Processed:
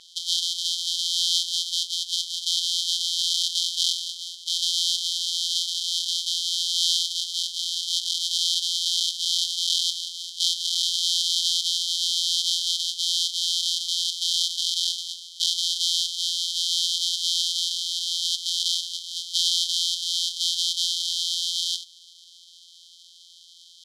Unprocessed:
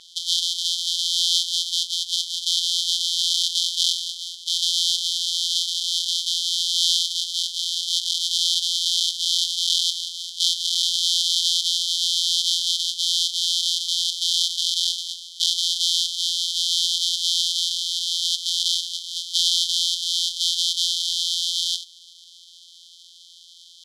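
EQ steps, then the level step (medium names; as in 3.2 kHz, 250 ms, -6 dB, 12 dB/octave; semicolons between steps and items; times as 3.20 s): band-stop 3.5 kHz, Q 23; -2.0 dB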